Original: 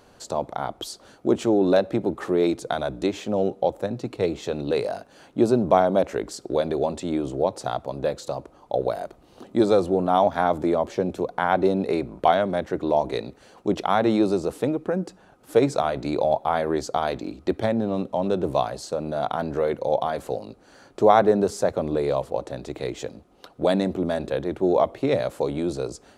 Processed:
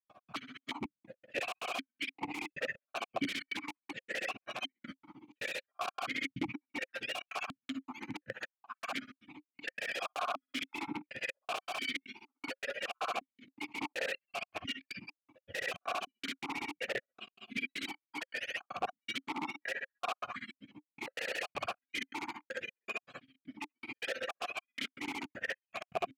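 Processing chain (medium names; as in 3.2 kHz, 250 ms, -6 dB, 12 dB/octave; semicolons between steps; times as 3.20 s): spectrum inverted on a logarithmic axis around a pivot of 940 Hz; filtered feedback delay 70 ms, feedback 38%, low-pass 2.3 kHz, level -9 dB; granulator 70 ms, grains 15 per s; trance gate ".x.xxx.xx." 158 bpm -60 dB; integer overflow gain 27.5 dB; stepped vowel filter 2.8 Hz; trim +12.5 dB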